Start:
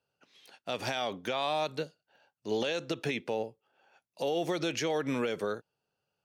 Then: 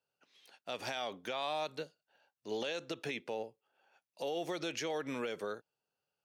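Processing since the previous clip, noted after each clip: bass shelf 220 Hz -8 dB; trim -5 dB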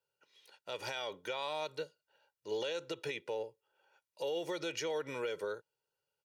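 comb 2.1 ms, depth 65%; trim -2 dB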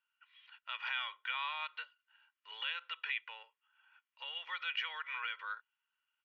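Chebyshev band-pass 1.1–3.1 kHz, order 3; trim +7 dB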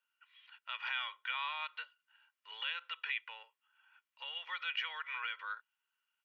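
high-pass 300 Hz

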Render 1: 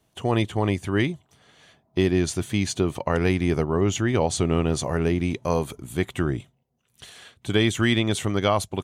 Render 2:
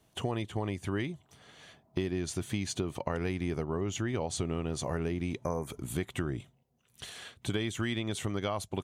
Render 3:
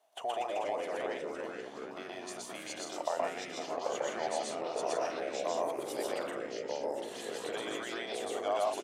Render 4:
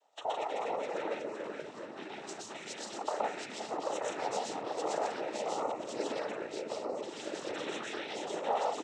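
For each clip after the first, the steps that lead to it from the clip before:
spectral selection erased 5.44–5.67 s, 2.4–4.9 kHz; compression 5:1, threshold -30 dBFS, peak gain reduction 13.5 dB
resonant high-pass 680 Hz, resonance Q 4.9; loudspeakers at several distances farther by 42 m 0 dB, 56 m -6 dB; ever faster or slower copies 205 ms, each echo -3 st, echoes 3; trim -7.5 dB
noise-vocoded speech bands 12

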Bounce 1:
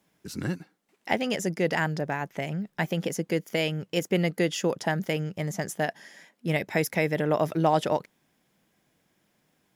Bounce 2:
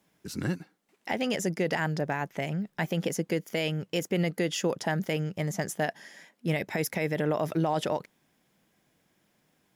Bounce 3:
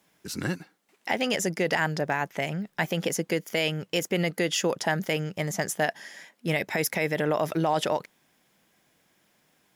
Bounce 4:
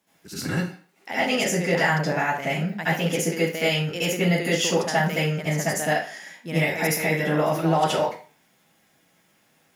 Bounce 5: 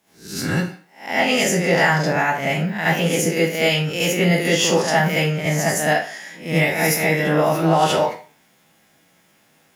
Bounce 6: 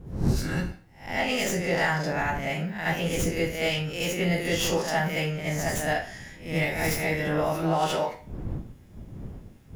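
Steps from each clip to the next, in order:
peak limiter -18 dBFS, peak gain reduction 8.5 dB
bass shelf 450 Hz -7 dB; trim +5.5 dB
reverberation RT60 0.40 s, pre-delay 67 ms, DRR -10.5 dB; trim -6.5 dB
reverse spectral sustain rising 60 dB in 0.39 s; trim +3.5 dB
tracing distortion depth 0.068 ms; wind noise 160 Hz -28 dBFS; trim -8.5 dB

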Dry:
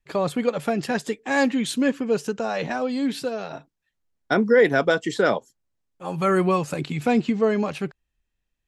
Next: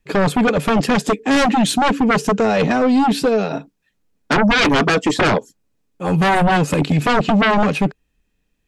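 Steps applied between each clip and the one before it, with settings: small resonant body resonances 200/280/430/2500 Hz, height 9 dB, ringing for 45 ms; sine folder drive 14 dB, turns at -2 dBFS; trim -9 dB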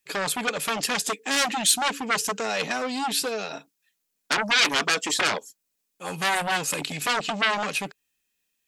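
tilt EQ +4.5 dB/octave; trim -9 dB

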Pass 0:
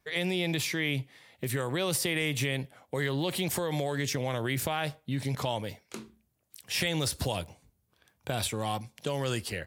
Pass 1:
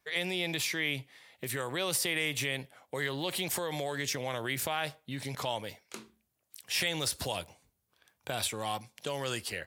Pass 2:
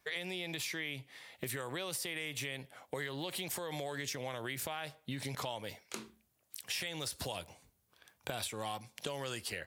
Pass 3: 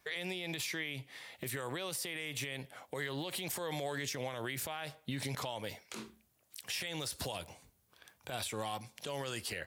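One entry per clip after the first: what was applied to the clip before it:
bass shelf 360 Hz -10 dB
compression 6:1, threshold -40 dBFS, peak gain reduction 13.5 dB; trim +3.5 dB
peak limiter -31 dBFS, peak gain reduction 10 dB; trim +3 dB

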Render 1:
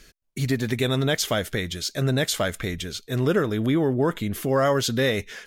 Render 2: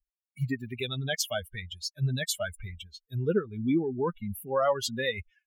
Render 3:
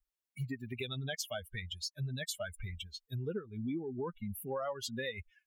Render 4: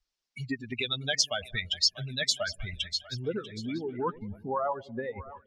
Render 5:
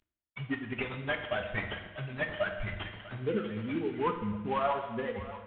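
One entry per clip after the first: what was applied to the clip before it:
expander on every frequency bin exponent 3
compression 4:1, threshold -38 dBFS, peak gain reduction 14.5 dB; trim +1 dB
two-band feedback delay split 670 Hz, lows 95 ms, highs 642 ms, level -15.5 dB; harmonic-percussive split percussive +9 dB; low-pass sweep 5.3 kHz -> 930 Hz, 3.69–4.20 s
CVSD coder 16 kbps; on a send at -4 dB: reverberation RT60 1.2 s, pre-delay 5 ms

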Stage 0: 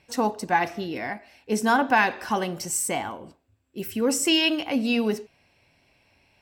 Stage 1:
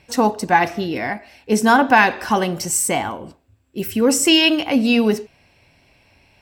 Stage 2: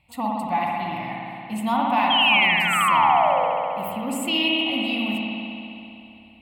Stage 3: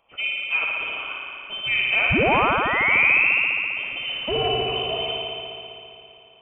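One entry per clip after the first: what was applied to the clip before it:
bass shelf 110 Hz +5 dB; trim +7 dB
painted sound fall, 2.10–3.48 s, 450–3300 Hz -12 dBFS; static phaser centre 1.6 kHz, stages 6; spring tank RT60 2.9 s, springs 56 ms, chirp 70 ms, DRR -3 dB; trim -8.5 dB
CVSD coder 64 kbps; high-pass 240 Hz 12 dB/octave; frequency inversion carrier 3.3 kHz

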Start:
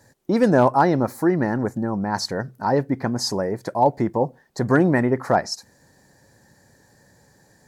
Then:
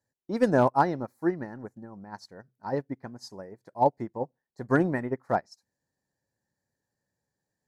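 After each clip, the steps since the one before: upward expansion 2.5:1, over -30 dBFS; trim -3.5 dB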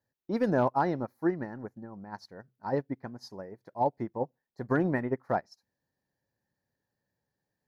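peak limiter -17 dBFS, peak gain reduction 6.5 dB; peaking EQ 8.1 kHz -14 dB 0.59 oct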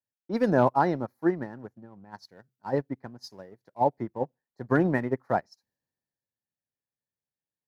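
in parallel at -8.5 dB: crossover distortion -46.5 dBFS; on the sum: three bands expanded up and down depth 40%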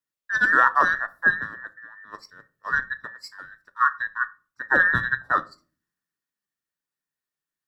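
every band turned upside down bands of 2 kHz; simulated room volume 220 m³, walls furnished, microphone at 0.43 m; trim +3.5 dB

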